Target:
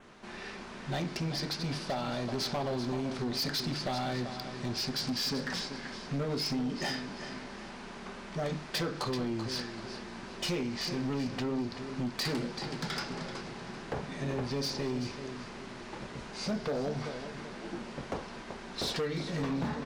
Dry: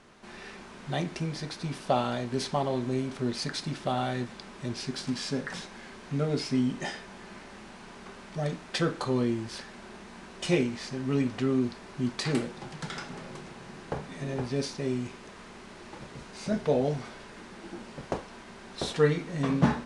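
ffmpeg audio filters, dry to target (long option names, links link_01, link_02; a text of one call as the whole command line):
ffmpeg -i in.wav -filter_complex "[0:a]equalizer=frequency=9400:width_type=o:width=0.78:gain=-5.5,bandreject=frequency=50:width_type=h:width=6,bandreject=frequency=100:width_type=h:width=6,bandreject=frequency=150:width_type=h:width=6,acompressor=threshold=-28dB:ratio=12,asplit=2[link_01][link_02];[link_02]aecho=0:1:385|770|1155|1540:0.266|0.0984|0.0364|0.0135[link_03];[link_01][link_03]amix=inputs=2:normalize=0,adynamicequalizer=threshold=0.00141:dfrequency=4800:dqfactor=3:tfrequency=4800:tqfactor=3:attack=5:release=100:ratio=0.375:range=4:mode=boostabove:tftype=bell,acontrast=40,asoftclip=type=hard:threshold=-24.5dB,volume=-4dB" out.wav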